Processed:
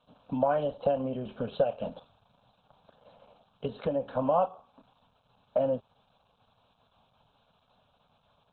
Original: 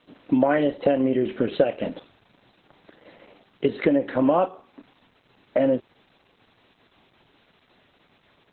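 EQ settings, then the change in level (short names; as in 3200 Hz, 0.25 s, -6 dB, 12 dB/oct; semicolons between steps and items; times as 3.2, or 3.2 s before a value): air absorption 62 m; fixed phaser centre 820 Hz, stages 4; -2.5 dB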